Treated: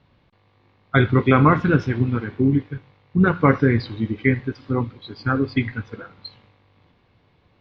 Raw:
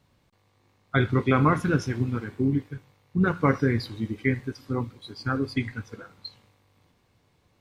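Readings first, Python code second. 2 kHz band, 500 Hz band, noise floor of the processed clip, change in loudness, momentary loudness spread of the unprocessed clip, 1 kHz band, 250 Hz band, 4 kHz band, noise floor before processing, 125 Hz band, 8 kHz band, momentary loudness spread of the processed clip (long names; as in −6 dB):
+6.0 dB, +6.0 dB, −61 dBFS, +6.0 dB, 19 LU, +6.0 dB, +6.0 dB, +3.0 dB, −67 dBFS, +6.0 dB, can't be measured, 16 LU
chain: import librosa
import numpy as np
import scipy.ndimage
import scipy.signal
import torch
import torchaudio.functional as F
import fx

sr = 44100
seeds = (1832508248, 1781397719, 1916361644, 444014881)

y = scipy.signal.sosfilt(scipy.signal.butter(4, 4000.0, 'lowpass', fs=sr, output='sos'), x)
y = F.gain(torch.from_numpy(y), 6.0).numpy()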